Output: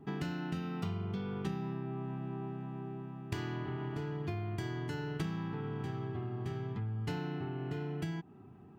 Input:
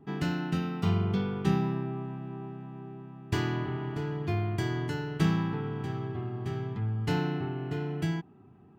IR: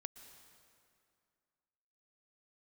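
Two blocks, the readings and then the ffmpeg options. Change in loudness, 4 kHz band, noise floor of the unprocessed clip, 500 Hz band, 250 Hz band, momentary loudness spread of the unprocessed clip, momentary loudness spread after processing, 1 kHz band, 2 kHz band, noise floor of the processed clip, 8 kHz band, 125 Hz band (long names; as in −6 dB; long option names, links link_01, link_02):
−7.0 dB, −7.5 dB, −55 dBFS, −6.0 dB, −7.5 dB, 12 LU, 4 LU, −6.5 dB, −7.0 dB, −55 dBFS, −7.5 dB, −7.0 dB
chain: -af "acompressor=threshold=-36dB:ratio=5,volume=1dB"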